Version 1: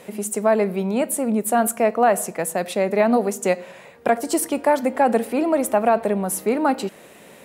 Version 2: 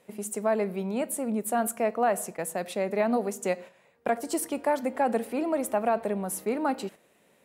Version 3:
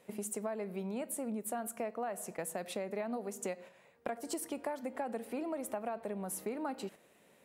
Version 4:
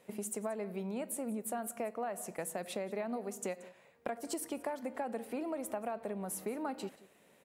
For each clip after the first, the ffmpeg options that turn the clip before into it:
ffmpeg -i in.wav -af "agate=range=-10dB:threshold=-33dB:ratio=16:detection=peak,volume=-8dB" out.wav
ffmpeg -i in.wav -af "acompressor=threshold=-34dB:ratio=6,volume=-1.5dB" out.wav
ffmpeg -i in.wav -af "aecho=1:1:180:0.106" out.wav

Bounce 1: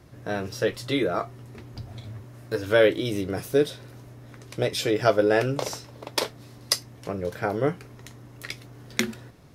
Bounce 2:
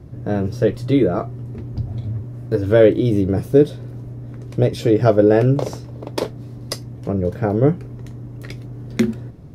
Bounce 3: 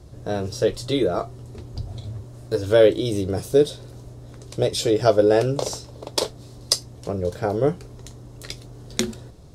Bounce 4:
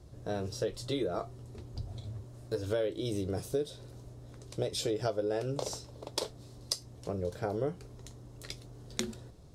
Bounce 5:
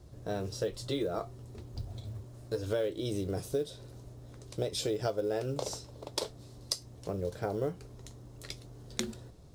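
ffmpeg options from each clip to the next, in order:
ffmpeg -i in.wav -af "tiltshelf=frequency=650:gain=10,volume=4.5dB" out.wav
ffmpeg -i in.wav -af "equalizer=frequency=125:width_type=o:width=1:gain=-8,equalizer=frequency=250:width_type=o:width=1:gain=-9,equalizer=frequency=2000:width_type=o:width=1:gain=-5,equalizer=frequency=4000:width_type=o:width=1:gain=7,equalizer=frequency=8000:width_type=o:width=1:gain=11" out.wav
ffmpeg -i in.wav -af "acompressor=threshold=-20dB:ratio=6,volume=-8.5dB" out.wav
ffmpeg -i in.wav -af "acrusher=bits=8:mode=log:mix=0:aa=0.000001" out.wav

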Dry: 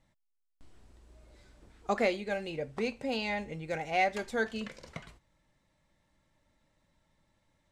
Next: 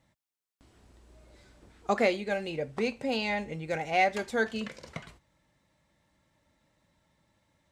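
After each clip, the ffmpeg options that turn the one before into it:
ffmpeg -i in.wav -af "highpass=57,volume=3dB" out.wav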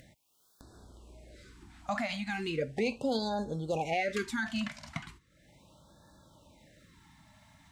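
ffmpeg -i in.wav -af "alimiter=limit=-23.5dB:level=0:latency=1:release=24,acompressor=mode=upward:threshold=-50dB:ratio=2.5,afftfilt=real='re*(1-between(b*sr/1024,400*pow(2500/400,0.5+0.5*sin(2*PI*0.37*pts/sr))/1.41,400*pow(2500/400,0.5+0.5*sin(2*PI*0.37*pts/sr))*1.41))':imag='im*(1-between(b*sr/1024,400*pow(2500/400,0.5+0.5*sin(2*PI*0.37*pts/sr))/1.41,400*pow(2500/400,0.5+0.5*sin(2*PI*0.37*pts/sr))*1.41))':win_size=1024:overlap=0.75,volume=2dB" out.wav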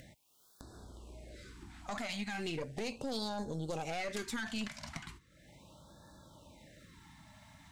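ffmpeg -i in.wav -filter_complex "[0:a]aeval=exprs='(tanh(22.4*val(0)+0.65)-tanh(0.65))/22.4':channel_layout=same,acrossover=split=4500[link_01][link_02];[link_01]alimiter=level_in=11dB:limit=-24dB:level=0:latency=1:release=172,volume=-11dB[link_03];[link_03][link_02]amix=inputs=2:normalize=0,volume=5.5dB" out.wav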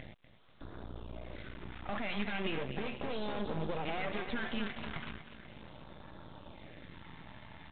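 ffmpeg -i in.wav -af "aecho=1:1:244|488|732|976|1220|1464:0.251|0.138|0.076|0.0418|0.023|0.0126,aeval=exprs='max(val(0),0)':channel_layout=same,volume=10.5dB" -ar 8000 -c:a pcm_alaw out.wav

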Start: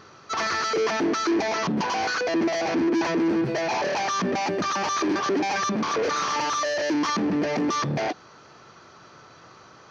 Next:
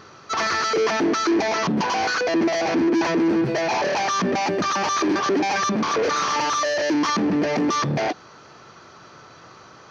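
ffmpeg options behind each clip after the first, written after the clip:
ffmpeg -i in.wav -af "acontrast=76,volume=-3.5dB" out.wav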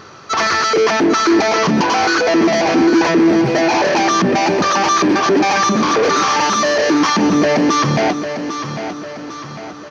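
ffmpeg -i in.wav -af "aecho=1:1:800|1600|2400|3200|4000:0.335|0.157|0.074|0.0348|0.0163,volume=7dB" out.wav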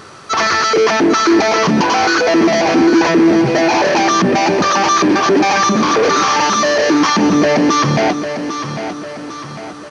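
ffmpeg -i in.wav -af "acrusher=bits=6:mix=0:aa=0.5,aresample=22050,aresample=44100,volume=1.5dB" out.wav

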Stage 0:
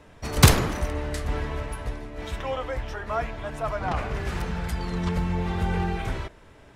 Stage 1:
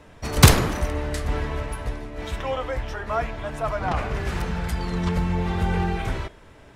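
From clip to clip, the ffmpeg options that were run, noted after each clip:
ffmpeg -i in.wav -af "bandreject=frequency=410.9:width_type=h:width=4,bandreject=frequency=821.8:width_type=h:width=4,bandreject=frequency=1232.7:width_type=h:width=4,bandreject=frequency=1643.6:width_type=h:width=4,bandreject=frequency=2054.5:width_type=h:width=4,bandreject=frequency=2465.4:width_type=h:width=4,bandreject=frequency=2876.3:width_type=h:width=4,bandreject=frequency=3287.2:width_type=h:width=4,bandreject=frequency=3698.1:width_type=h:width=4,bandreject=frequency=4109:width_type=h:width=4,bandreject=frequency=4519.9:width_type=h:width=4,bandreject=frequency=4930.8:width_type=h:width=4,bandreject=frequency=5341.7:width_type=h:width=4,bandreject=frequency=5752.6:width_type=h:width=4,bandreject=frequency=6163.5:width_type=h:width=4,bandreject=frequency=6574.4:width_type=h:width=4,bandreject=frequency=6985.3:width_type=h:width=4,bandreject=frequency=7396.2:width_type=h:width=4,bandreject=frequency=7807.1:width_type=h:width=4,bandreject=frequency=8218:width_type=h:width=4,bandreject=frequency=8628.9:width_type=h:width=4,bandreject=frequency=9039.8:width_type=h:width=4,bandreject=frequency=9450.7:width_type=h:width=4,bandreject=frequency=9861.6:width_type=h:width=4,bandreject=frequency=10272.5:width_type=h:width=4,bandreject=frequency=10683.4:width_type=h:width=4,bandreject=frequency=11094.3:width_type=h:width=4,bandreject=frequency=11505.2:width_type=h:width=4,bandreject=frequency=11916.1:width_type=h:width=4,bandreject=frequency=12327:width_type=h:width=4,bandreject=frequency=12737.9:width_type=h:width=4,bandreject=frequency=13148.8:width_type=h:width=4,bandreject=frequency=13559.7:width_type=h:width=4,bandreject=frequency=13970.6:width_type=h:width=4,bandreject=frequency=14381.5:width_type=h:width=4,bandreject=frequency=14792.4:width_type=h:width=4,bandreject=frequency=15203.3:width_type=h:width=4,volume=2.5dB" out.wav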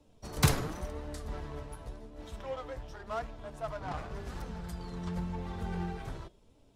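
ffmpeg -i in.wav -filter_complex "[0:a]flanger=delay=3.4:depth=4:regen=55:speed=0.91:shape=triangular,acrossover=split=140|2700[link_01][link_02][link_03];[link_02]adynamicsmooth=sensitivity=5.5:basefreq=620[link_04];[link_01][link_04][link_03]amix=inputs=3:normalize=0,volume=-8.5dB" out.wav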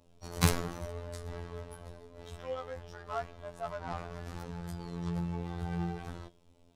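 ffmpeg -i in.wav -af "afftfilt=real='hypot(re,im)*cos(PI*b)':imag='0':win_size=2048:overlap=0.75,volume=2.5dB" out.wav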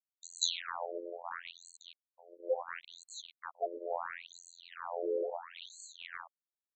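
ffmpeg -i in.wav -af "aeval=exprs='val(0)*gte(abs(val(0)),0.02)':channel_layout=same,asuperstop=centerf=5200:order=8:qfactor=2.4,afftfilt=real='re*between(b*sr/1024,420*pow(6000/420,0.5+0.5*sin(2*PI*0.73*pts/sr))/1.41,420*pow(6000/420,0.5+0.5*sin(2*PI*0.73*pts/sr))*1.41)':imag='im*between(b*sr/1024,420*pow(6000/420,0.5+0.5*sin(2*PI*0.73*pts/sr))/1.41,420*pow(6000/420,0.5+0.5*sin(2*PI*0.73*pts/sr))*1.41)':win_size=1024:overlap=0.75,volume=9dB" out.wav

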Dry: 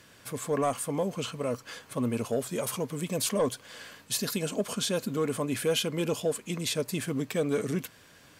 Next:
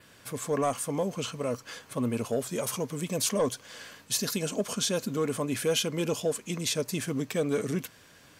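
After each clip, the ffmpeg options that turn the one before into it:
ffmpeg -i in.wav -af "adynamicequalizer=threshold=0.00316:dfrequency=6000:dqfactor=3:tfrequency=6000:tqfactor=3:attack=5:release=100:ratio=0.375:range=3:mode=boostabove:tftype=bell" out.wav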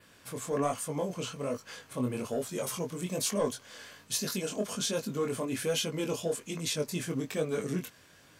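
ffmpeg -i in.wav -af "flanger=delay=19:depth=4.7:speed=1.2" out.wav

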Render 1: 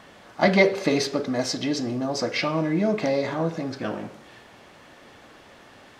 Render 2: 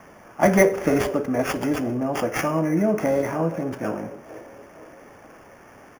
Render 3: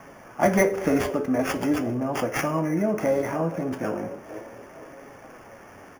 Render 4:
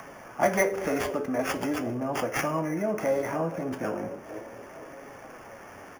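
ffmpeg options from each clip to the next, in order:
ffmpeg -i in.wav -filter_complex "[0:a]acrossover=split=350|750|1700[link_01][link_02][link_03][link_04];[link_02]aecho=1:1:470|940|1410|1880|2350|2820:0.335|0.167|0.0837|0.0419|0.0209|0.0105[link_05];[link_04]acrusher=samples=11:mix=1:aa=0.000001[link_06];[link_01][link_05][link_03][link_06]amix=inputs=4:normalize=0,volume=2dB" out.wav
ffmpeg -i in.wav -filter_complex "[0:a]asplit=2[link_01][link_02];[link_02]acompressor=threshold=-28dB:ratio=6,volume=-1dB[link_03];[link_01][link_03]amix=inputs=2:normalize=0,flanger=delay=7.2:depth=4.4:regen=66:speed=0.4:shape=sinusoidal" out.wav
ffmpeg -i in.wav -filter_complex "[0:a]acrossover=split=440[link_01][link_02];[link_01]alimiter=level_in=1dB:limit=-24dB:level=0:latency=1:release=230,volume=-1dB[link_03];[link_02]acompressor=mode=upward:threshold=-39dB:ratio=2.5[link_04];[link_03][link_04]amix=inputs=2:normalize=0,volume=-1.5dB" out.wav

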